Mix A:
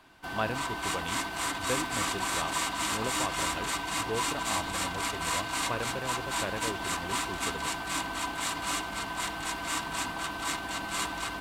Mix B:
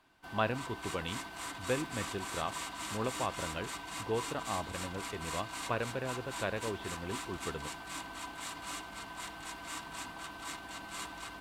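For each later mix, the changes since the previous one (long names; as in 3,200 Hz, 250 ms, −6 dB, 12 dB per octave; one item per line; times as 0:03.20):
background −10.0 dB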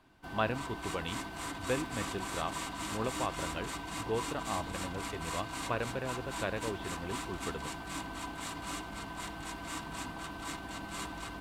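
background: add low-shelf EQ 490 Hz +9.5 dB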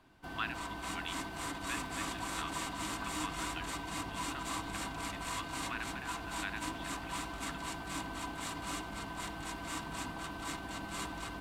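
speech: add inverse Chebyshev high-pass filter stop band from 490 Hz, stop band 50 dB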